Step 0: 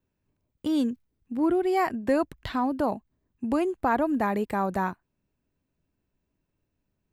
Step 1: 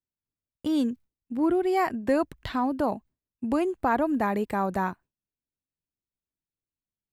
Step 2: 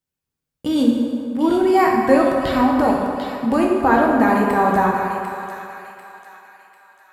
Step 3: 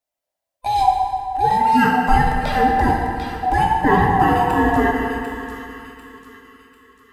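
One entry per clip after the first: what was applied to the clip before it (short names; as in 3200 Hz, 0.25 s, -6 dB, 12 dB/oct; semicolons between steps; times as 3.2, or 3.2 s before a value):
gate with hold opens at -54 dBFS
thin delay 0.745 s, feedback 43%, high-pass 2200 Hz, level -6 dB; reverb RT60 2.9 s, pre-delay 3 ms, DRR -2.5 dB; gain +6 dB
band-swap scrambler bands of 500 Hz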